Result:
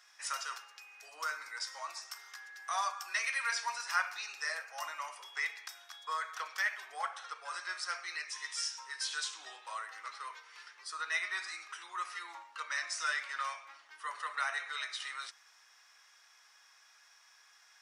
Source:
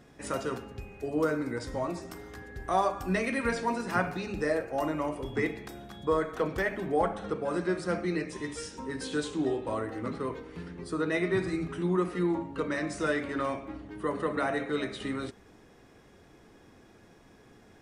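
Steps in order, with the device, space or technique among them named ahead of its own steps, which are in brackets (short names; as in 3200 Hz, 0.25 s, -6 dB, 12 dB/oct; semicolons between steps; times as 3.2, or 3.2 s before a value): headphones lying on a table (HPF 1100 Hz 24 dB/oct; bell 5500 Hz +10 dB 0.52 oct)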